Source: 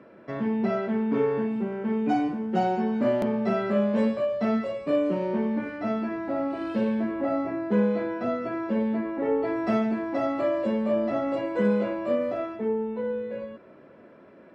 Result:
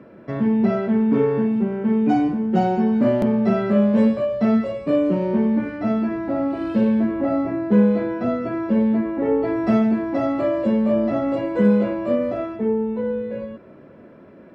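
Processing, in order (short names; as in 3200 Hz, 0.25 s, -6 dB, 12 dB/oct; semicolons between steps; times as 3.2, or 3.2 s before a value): low shelf 270 Hz +10.5 dB; gain +2 dB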